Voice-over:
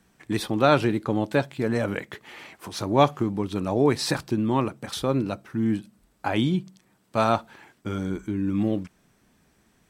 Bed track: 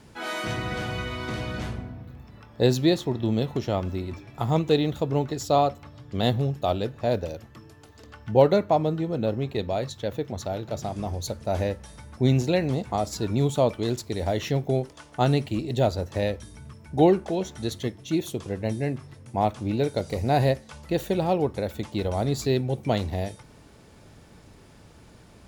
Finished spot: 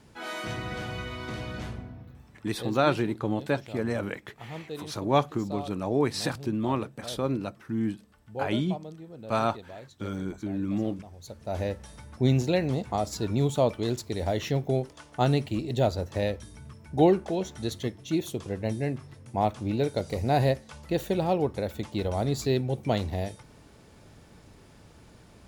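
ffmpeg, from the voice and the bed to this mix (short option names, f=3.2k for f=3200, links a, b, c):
-filter_complex "[0:a]adelay=2150,volume=-4.5dB[a];[1:a]volume=10.5dB,afade=t=out:st=2.01:d=0.64:silence=0.237137,afade=t=in:st=11.18:d=0.6:silence=0.177828[b];[a][b]amix=inputs=2:normalize=0"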